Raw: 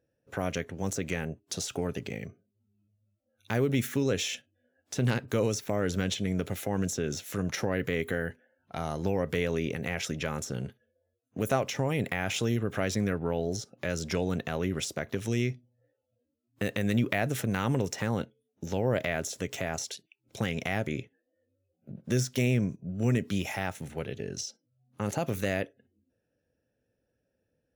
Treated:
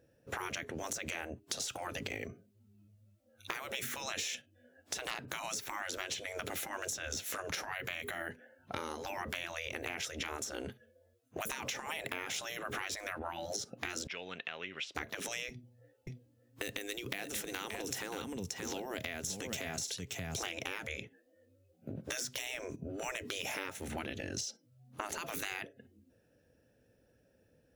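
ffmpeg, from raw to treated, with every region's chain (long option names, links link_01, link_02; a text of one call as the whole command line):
ffmpeg -i in.wav -filter_complex "[0:a]asettb=1/sr,asplit=3[link_01][link_02][link_03];[link_01]atrim=end=14.074[link_04];[link_02]atrim=start=14.07:end=14.95,asetpts=PTS-STARTPTS,afade=type=in:duration=0.004:curve=qsin,afade=type=out:start_time=0.876:duration=0.004:curve=qsin,bandpass=frequency=2900:width_type=q:width=2.3,aemphasis=mode=reproduction:type=75fm[link_05];[link_03]atrim=start=14.946[link_06];[link_04][link_05]acrossfade=duration=0.004:curve1=hsin:curve2=qsin[link_07];[link_07][link_06]acrossfade=duration=0.004:curve1=qsin:curve2=hsin,asettb=1/sr,asplit=3[link_08][link_09][link_10];[link_08]atrim=end=15.494[link_11];[link_09]atrim=start=15.49:end=20.43,asetpts=PTS-STARTPTS,afade=type=in:duration=0.004:curve=qsin,afade=type=out:start_time=4.936:duration=0.004:curve=qsin,bandreject=frequency=590:width=7.3,acrossover=split=190|3000[link_12][link_13][link_14];[link_13]acompressor=threshold=-49dB:ratio=2:attack=3.2:release=140:knee=2.83:detection=peak[link_15];[link_12][link_15][link_14]amix=inputs=3:normalize=0,aecho=1:1:579:0.398,atrim=end_sample=217854[link_16];[link_10]atrim=start=20.426[link_17];[link_11][link_16]acrossfade=duration=0.004:curve1=hsin:curve2=qsin[link_18];[link_18][link_17]acrossfade=duration=0.004:curve1=qsin:curve2=hsin,deesser=0.55,afftfilt=real='re*lt(hypot(re,im),0.0631)':imag='im*lt(hypot(re,im),0.0631)':win_size=1024:overlap=0.75,acompressor=threshold=-45dB:ratio=6,volume=9dB" out.wav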